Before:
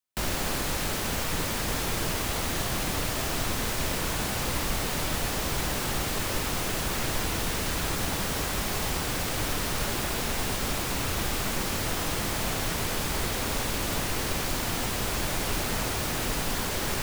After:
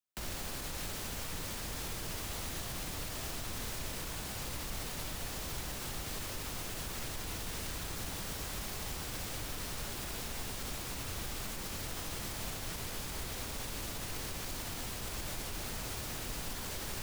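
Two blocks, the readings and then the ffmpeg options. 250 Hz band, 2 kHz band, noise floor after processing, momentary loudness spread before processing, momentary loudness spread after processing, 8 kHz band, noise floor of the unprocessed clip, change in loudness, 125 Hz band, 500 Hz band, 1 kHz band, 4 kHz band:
−13.0 dB, −12.5 dB, −41 dBFS, 0 LU, 1 LU, −9.5 dB, −30 dBFS, −11.0 dB, −11.0 dB, −13.5 dB, −13.0 dB, −10.5 dB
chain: -filter_complex "[0:a]alimiter=limit=-22.5dB:level=0:latency=1:release=96,acrossover=split=130|3000[link_01][link_02][link_03];[link_02]acompressor=threshold=-40dB:ratio=2[link_04];[link_01][link_04][link_03]amix=inputs=3:normalize=0,volume=-6dB"

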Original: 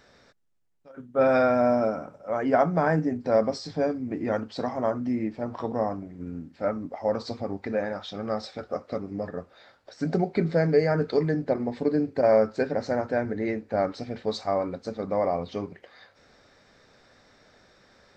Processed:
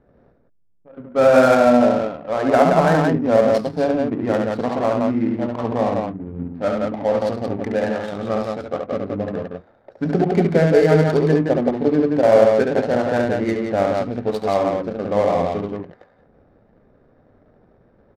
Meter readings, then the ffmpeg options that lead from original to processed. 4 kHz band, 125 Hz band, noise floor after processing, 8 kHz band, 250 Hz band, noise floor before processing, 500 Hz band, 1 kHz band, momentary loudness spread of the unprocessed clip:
+6.0 dB, +8.5 dB, −57 dBFS, can't be measured, +8.5 dB, −59 dBFS, +8.5 dB, +8.0 dB, 12 LU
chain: -af "aecho=1:1:69.97|172:0.631|0.708,adynamicsmooth=sensitivity=5:basefreq=510,volume=5.5dB"

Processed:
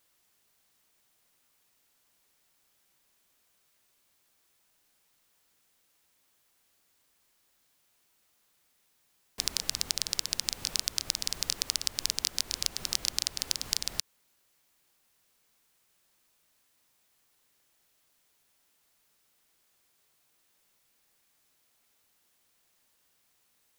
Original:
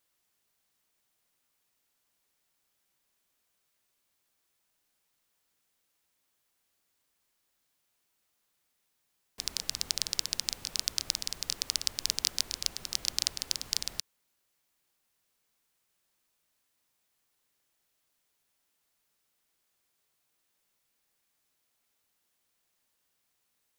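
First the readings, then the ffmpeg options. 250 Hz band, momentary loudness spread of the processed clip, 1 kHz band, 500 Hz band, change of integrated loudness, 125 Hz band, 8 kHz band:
+3.0 dB, 2 LU, +3.0 dB, +3.0 dB, +1.0 dB, +3.0 dB, +1.5 dB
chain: -af "acompressor=threshold=-30dB:ratio=6,volume=6.5dB"

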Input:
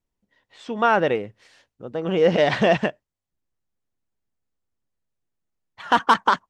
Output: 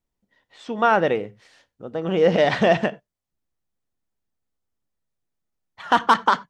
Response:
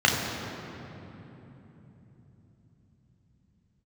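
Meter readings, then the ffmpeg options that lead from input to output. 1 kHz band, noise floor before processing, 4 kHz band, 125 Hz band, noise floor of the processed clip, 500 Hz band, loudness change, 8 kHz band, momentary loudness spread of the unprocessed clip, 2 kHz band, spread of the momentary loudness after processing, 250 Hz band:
+0.5 dB, −85 dBFS, −0.5 dB, 0.0 dB, −84 dBFS, +0.5 dB, +0.5 dB, can't be measured, 13 LU, 0.0 dB, 14 LU, +0.5 dB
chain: -filter_complex "[0:a]asplit=2[link_01][link_02];[1:a]atrim=start_sample=2205,atrim=end_sample=4410[link_03];[link_02][link_03]afir=irnorm=-1:irlink=0,volume=-31dB[link_04];[link_01][link_04]amix=inputs=2:normalize=0"

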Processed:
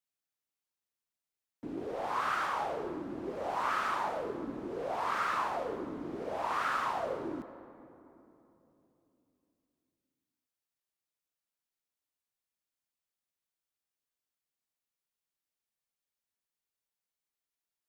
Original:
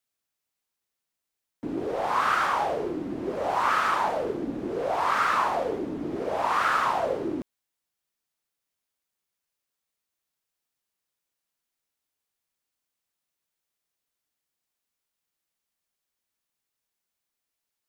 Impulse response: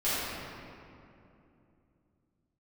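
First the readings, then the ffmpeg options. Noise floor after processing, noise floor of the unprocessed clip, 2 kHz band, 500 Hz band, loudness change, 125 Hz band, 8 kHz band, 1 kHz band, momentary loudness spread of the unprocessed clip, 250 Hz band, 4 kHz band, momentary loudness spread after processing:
below −85 dBFS, −85 dBFS, −8.5 dB, −8.0 dB, −8.5 dB, −8.0 dB, −8.5 dB, −8.5 dB, 9 LU, −8.0 dB, −8.5 dB, 10 LU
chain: -filter_complex "[0:a]asplit=2[link_01][link_02];[1:a]atrim=start_sample=2205,asetrate=37044,aresample=44100,adelay=68[link_03];[link_02][link_03]afir=irnorm=-1:irlink=0,volume=-25.5dB[link_04];[link_01][link_04]amix=inputs=2:normalize=0,volume=-8.5dB"

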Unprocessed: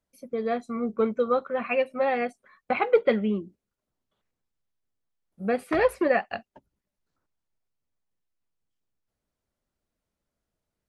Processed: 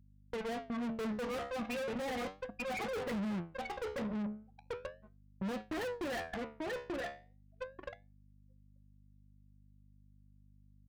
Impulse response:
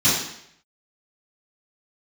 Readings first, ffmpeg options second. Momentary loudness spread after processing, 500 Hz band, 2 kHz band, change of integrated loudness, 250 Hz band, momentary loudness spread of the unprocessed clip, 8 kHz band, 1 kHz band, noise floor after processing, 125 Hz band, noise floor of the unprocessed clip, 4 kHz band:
11 LU, −13.5 dB, −9.5 dB, −13.5 dB, −7.5 dB, 11 LU, can't be measured, −12.0 dB, −63 dBFS, −4.0 dB, below −85 dBFS, −2.5 dB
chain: -filter_complex "[0:a]lowpass=frequency=6600:width_type=q:width=4.9,aecho=1:1:885|1770|2655|3540|4425:0.473|0.213|0.0958|0.0431|0.0194,afftfilt=real='re*gte(hypot(re,im),0.141)':imag='im*gte(hypot(re,im),0.141)':win_size=1024:overlap=0.75,asubboost=boost=2.5:cutoff=200,acrossover=split=2000[link_01][link_02];[link_01]acrusher=bits=4:mix=0:aa=0.5[link_03];[link_02]acontrast=20[link_04];[link_03][link_04]amix=inputs=2:normalize=0,flanger=delay=9.3:depth=5.1:regen=75:speed=0.36:shape=sinusoidal,aeval=exprs='(tanh(178*val(0)+0.6)-tanh(0.6))/178':channel_layout=same,aeval=exprs='val(0)+0.000158*(sin(2*PI*50*n/s)+sin(2*PI*2*50*n/s)/2+sin(2*PI*3*50*n/s)/3+sin(2*PI*4*50*n/s)/4+sin(2*PI*5*50*n/s)/5)':channel_layout=same,highpass=frequency=80:poles=1,bass=frequency=250:gain=7,treble=frequency=4000:gain=-5,acompressor=threshold=-51dB:ratio=2,volume=12dB"

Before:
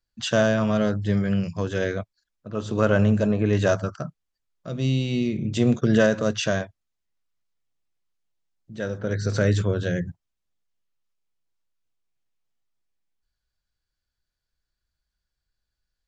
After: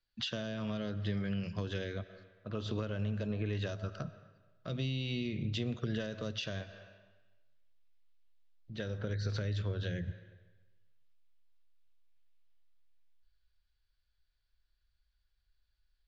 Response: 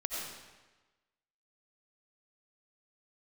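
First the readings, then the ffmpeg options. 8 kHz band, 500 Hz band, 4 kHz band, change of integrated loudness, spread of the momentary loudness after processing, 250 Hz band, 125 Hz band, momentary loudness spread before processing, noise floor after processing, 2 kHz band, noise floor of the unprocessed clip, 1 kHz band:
can't be measured, −17.5 dB, −7.5 dB, −14.0 dB, 9 LU, −15.0 dB, −11.5 dB, 14 LU, −79 dBFS, −15.0 dB, −84 dBFS, −17.5 dB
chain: -filter_complex "[0:a]highshelf=frequency=2100:gain=11,asplit=2[link_01][link_02];[1:a]atrim=start_sample=2205[link_03];[link_02][link_03]afir=irnorm=-1:irlink=0,volume=-21dB[link_04];[link_01][link_04]amix=inputs=2:normalize=0,asubboost=boost=3.5:cutoff=87,acompressor=threshold=-26dB:ratio=6,lowpass=frequency=4200:width=0.5412,lowpass=frequency=4200:width=1.3066,acrossover=split=450|3000[link_05][link_06][link_07];[link_06]acompressor=threshold=-39dB:ratio=6[link_08];[link_05][link_08][link_07]amix=inputs=3:normalize=0,volume=-5.5dB"

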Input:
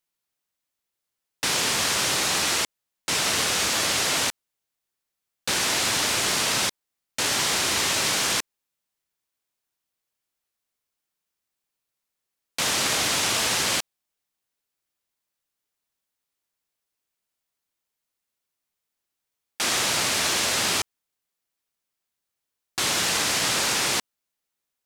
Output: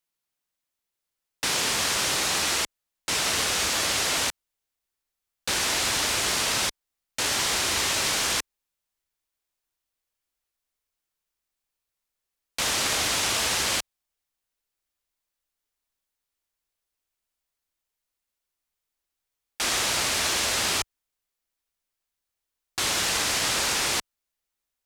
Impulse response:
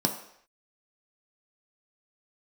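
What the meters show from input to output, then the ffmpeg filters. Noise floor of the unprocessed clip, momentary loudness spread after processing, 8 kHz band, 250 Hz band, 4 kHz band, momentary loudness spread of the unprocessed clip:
−84 dBFS, 6 LU, −1.5 dB, −3.0 dB, −1.5 dB, 6 LU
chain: -af "asubboost=boost=4:cutoff=65,volume=-1.5dB"

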